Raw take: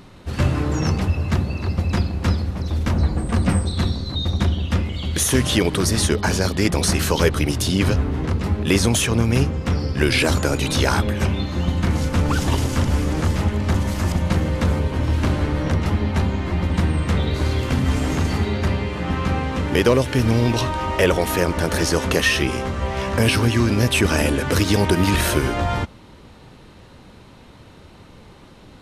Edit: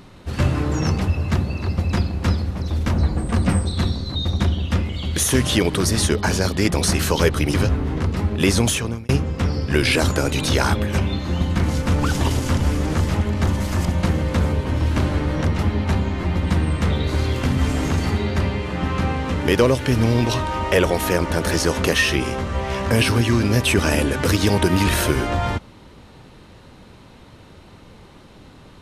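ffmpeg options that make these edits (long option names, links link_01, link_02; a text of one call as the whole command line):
ffmpeg -i in.wav -filter_complex "[0:a]asplit=3[link_01][link_02][link_03];[link_01]atrim=end=7.542[link_04];[link_02]atrim=start=7.808:end=9.36,asetpts=PTS-STARTPTS,afade=type=out:start_time=1.122:duration=0.43[link_05];[link_03]atrim=start=9.36,asetpts=PTS-STARTPTS,afade=type=in:duration=0.004:curve=hsin[link_06];[link_05][link_06]concat=n=2:v=0:a=1[link_07];[link_04][link_07]acrossfade=duration=0.004:curve1=hsin:curve2=hsin" out.wav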